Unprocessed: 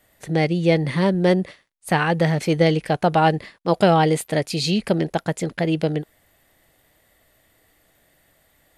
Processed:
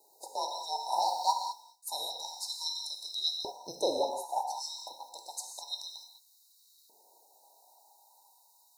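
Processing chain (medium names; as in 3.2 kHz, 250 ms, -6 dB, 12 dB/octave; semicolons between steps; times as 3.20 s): split-band scrambler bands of 1 kHz; 0.92–1.32 s: waveshaping leveller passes 1; 3.90–5.12 s: treble shelf 2.2 kHz -12 dB; word length cut 10-bit, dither none; gated-style reverb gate 230 ms flat, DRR 2.5 dB; LFO high-pass saw up 0.29 Hz 400–4000 Hz; brick-wall FIR band-stop 1–3.7 kHz; trim -4 dB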